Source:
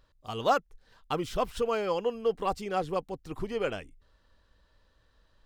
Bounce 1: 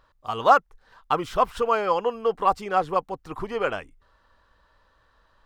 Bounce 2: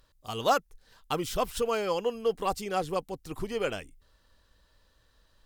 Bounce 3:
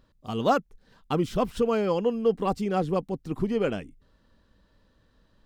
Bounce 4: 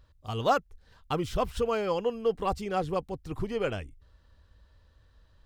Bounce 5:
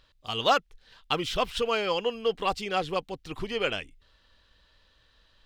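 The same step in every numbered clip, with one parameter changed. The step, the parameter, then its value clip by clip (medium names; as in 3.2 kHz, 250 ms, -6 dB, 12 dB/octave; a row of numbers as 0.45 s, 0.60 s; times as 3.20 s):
peaking EQ, frequency: 1.1 kHz, 15 kHz, 210 Hz, 75 Hz, 3.2 kHz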